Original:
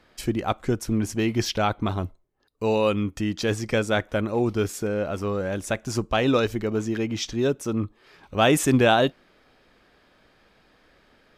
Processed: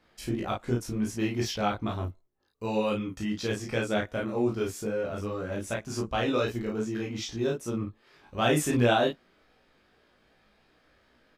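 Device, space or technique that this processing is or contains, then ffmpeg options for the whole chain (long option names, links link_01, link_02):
double-tracked vocal: -filter_complex "[0:a]asplit=2[link_01][link_02];[link_02]adelay=33,volume=-2dB[link_03];[link_01][link_03]amix=inputs=2:normalize=0,flanger=delay=17:depth=3:speed=2.6,volume=-4.5dB"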